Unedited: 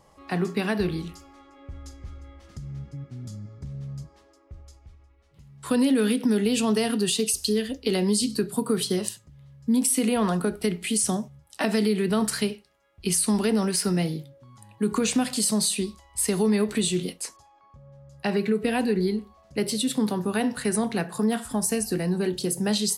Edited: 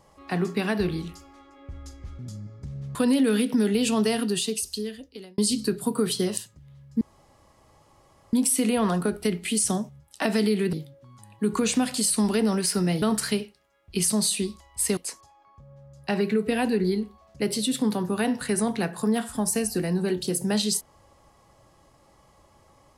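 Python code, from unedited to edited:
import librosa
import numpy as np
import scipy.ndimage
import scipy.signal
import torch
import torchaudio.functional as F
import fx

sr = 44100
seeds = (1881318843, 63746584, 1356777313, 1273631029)

y = fx.edit(x, sr, fx.cut(start_s=2.19, length_s=0.99),
    fx.cut(start_s=3.94, length_s=1.72),
    fx.fade_out_span(start_s=6.81, length_s=1.28),
    fx.insert_room_tone(at_s=9.72, length_s=1.32),
    fx.swap(start_s=12.12, length_s=1.08, other_s=14.12, other_length_s=1.37),
    fx.cut(start_s=16.36, length_s=0.77), tone=tone)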